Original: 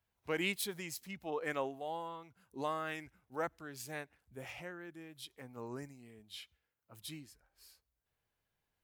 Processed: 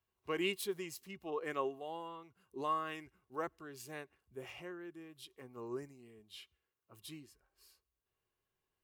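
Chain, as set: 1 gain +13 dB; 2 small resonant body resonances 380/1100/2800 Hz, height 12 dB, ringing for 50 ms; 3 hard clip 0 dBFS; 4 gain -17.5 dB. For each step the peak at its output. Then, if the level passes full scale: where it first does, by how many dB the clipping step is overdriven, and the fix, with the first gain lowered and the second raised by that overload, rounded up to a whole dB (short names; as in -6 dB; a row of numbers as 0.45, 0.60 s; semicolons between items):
-8.5, -5.5, -5.5, -23.0 dBFS; no overload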